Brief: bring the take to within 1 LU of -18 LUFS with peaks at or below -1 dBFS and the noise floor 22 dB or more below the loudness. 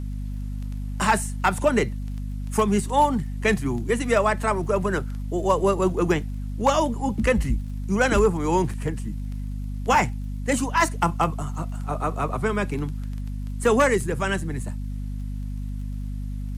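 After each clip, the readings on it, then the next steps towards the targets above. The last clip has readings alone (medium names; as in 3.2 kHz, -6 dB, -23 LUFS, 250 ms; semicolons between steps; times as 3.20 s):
tick rate 34 per s; hum 50 Hz; highest harmonic 250 Hz; hum level -27 dBFS; loudness -24.5 LUFS; peak level -8.0 dBFS; loudness target -18.0 LUFS
-> de-click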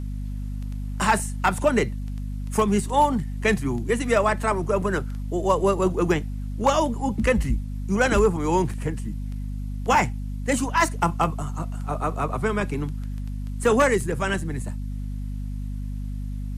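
tick rate 0.060 per s; hum 50 Hz; highest harmonic 250 Hz; hum level -27 dBFS
-> de-hum 50 Hz, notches 5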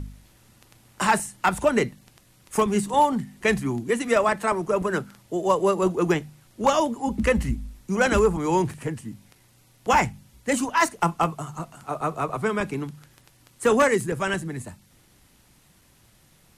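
hum not found; loudness -24.0 LUFS; peak level -8.0 dBFS; loudness target -18.0 LUFS
-> trim +6 dB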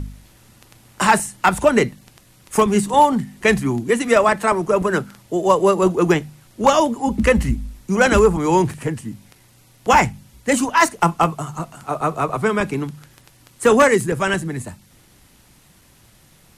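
loudness -18.0 LUFS; peak level -2.0 dBFS; noise floor -52 dBFS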